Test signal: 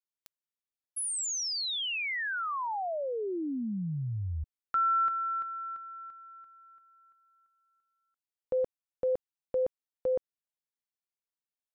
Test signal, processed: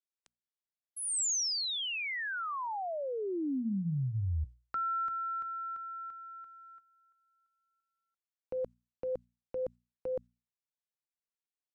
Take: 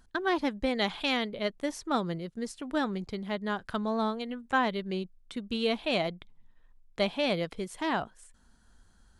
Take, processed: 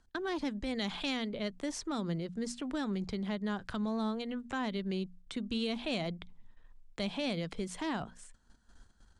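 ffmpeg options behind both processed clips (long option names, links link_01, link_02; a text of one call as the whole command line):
ffmpeg -i in.wav -filter_complex "[0:a]acrossover=split=250|5900[link_01][link_02][link_03];[link_02]acompressor=threshold=-43dB:ratio=2:attack=1.8:release=105:knee=2.83:detection=peak[link_04];[link_01][link_04][link_03]amix=inputs=3:normalize=0,agate=range=-10dB:threshold=-59dB:ratio=16:release=140:detection=peak,lowpass=frequency=8800:width=0.5412,lowpass=frequency=8800:width=1.3066,bandreject=frequency=60:width_type=h:width=6,bandreject=frequency=120:width_type=h:width=6,bandreject=frequency=180:width_type=h:width=6,bandreject=frequency=240:width_type=h:width=6,acrossover=split=1700[link_05][link_06];[link_05]alimiter=level_in=7dB:limit=-24dB:level=0:latency=1:release=110,volume=-7dB[link_07];[link_07][link_06]amix=inputs=2:normalize=0,volume=3dB" out.wav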